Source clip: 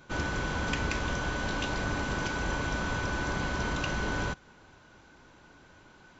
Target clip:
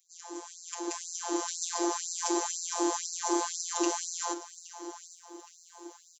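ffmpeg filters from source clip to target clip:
-af "equalizer=f=1400:w=5.8:g=-14.5,aecho=1:1:818|1636|2454:0.188|0.0659|0.0231,flanger=delay=7.3:depth=6.9:regen=-71:speed=1.7:shape=sinusoidal,afftfilt=real='hypot(re,im)*cos(PI*b)':imag='0':win_size=1024:overlap=0.75,firequalizer=gain_entry='entry(110,0);entry(160,13);entry(340,13);entry(540,-5);entry(770,7);entry(1300,1);entry(2300,-10);entry(7000,15)':delay=0.05:min_phase=1,dynaudnorm=f=430:g=5:m=5.01,afftfilt=real='re*gte(b*sr/1024,270*pow(4100/270,0.5+0.5*sin(2*PI*2*pts/sr)))':imag='im*gte(b*sr/1024,270*pow(4100/270,0.5+0.5*sin(2*PI*2*pts/sr)))':win_size=1024:overlap=0.75,volume=0.631"

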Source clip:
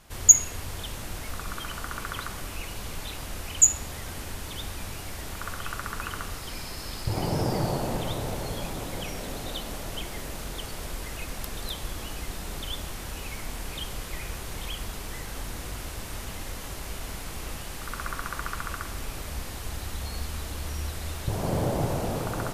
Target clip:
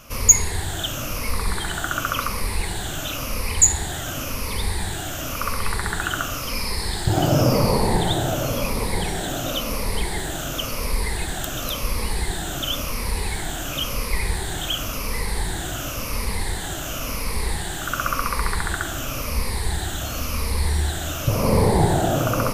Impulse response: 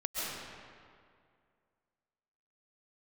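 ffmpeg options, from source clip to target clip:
-filter_complex "[0:a]afftfilt=real='re*pow(10,12/40*sin(2*PI*(0.89*log(max(b,1)*sr/1024/100)/log(2)-(-0.94)*(pts-256)/sr)))':imag='im*pow(10,12/40*sin(2*PI*(0.89*log(max(b,1)*sr/1024/100)/log(2)-(-0.94)*(pts-256)/sr)))':win_size=1024:overlap=0.75,asplit=2[s0][s1];[s1]acontrast=82,volume=1.12[s2];[s0][s2]amix=inputs=2:normalize=0,volume=0.708"

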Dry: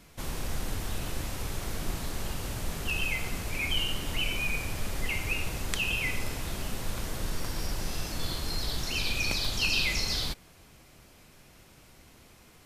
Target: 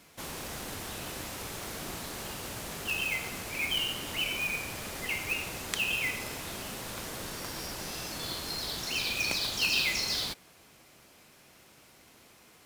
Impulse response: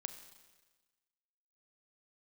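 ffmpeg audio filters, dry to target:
-af "highpass=f=270:p=1,acrusher=bits=3:mode=log:mix=0:aa=0.000001"

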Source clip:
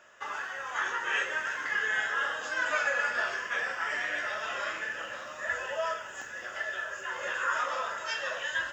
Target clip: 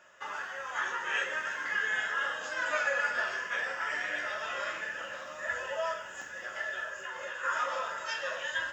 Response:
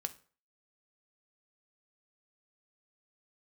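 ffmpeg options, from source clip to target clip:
-filter_complex "[0:a]asplit=3[s0][s1][s2];[s0]afade=t=out:st=6.89:d=0.02[s3];[s1]acompressor=threshold=0.0178:ratio=6,afade=t=in:st=6.89:d=0.02,afade=t=out:st=7.43:d=0.02[s4];[s2]afade=t=in:st=7.43:d=0.02[s5];[s3][s4][s5]amix=inputs=3:normalize=0[s6];[1:a]atrim=start_sample=2205,asetrate=48510,aresample=44100[s7];[s6][s7]afir=irnorm=-1:irlink=0"

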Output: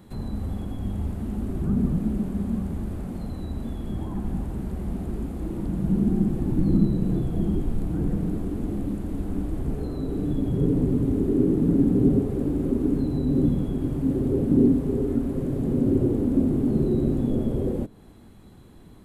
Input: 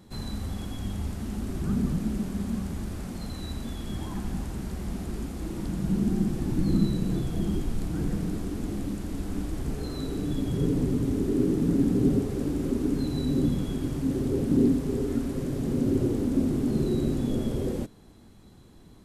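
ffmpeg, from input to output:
-filter_complex "[0:a]equalizer=f=5600:w=1.4:g=-9,acrossover=split=940[s0][s1];[s1]acompressor=threshold=0.00126:ratio=6[s2];[s0][s2]amix=inputs=2:normalize=0,volume=1.5"

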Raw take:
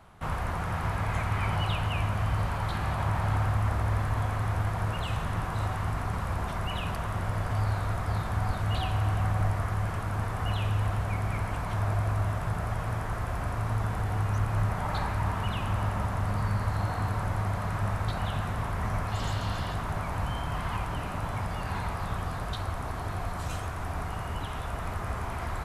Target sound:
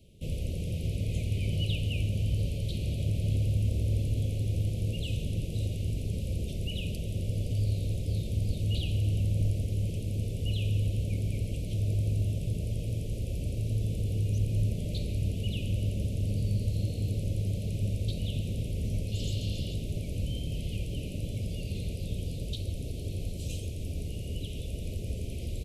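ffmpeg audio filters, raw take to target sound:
-filter_complex "[0:a]asuperstop=centerf=1200:order=12:qfactor=0.59,asplit=2[s0][s1];[s1]asplit=5[s2][s3][s4][s5][s6];[s2]adelay=140,afreqshift=57,volume=0.075[s7];[s3]adelay=280,afreqshift=114,volume=0.0479[s8];[s4]adelay=420,afreqshift=171,volume=0.0305[s9];[s5]adelay=560,afreqshift=228,volume=0.0197[s10];[s6]adelay=700,afreqshift=285,volume=0.0126[s11];[s7][s8][s9][s10][s11]amix=inputs=5:normalize=0[s12];[s0][s12]amix=inputs=2:normalize=0"

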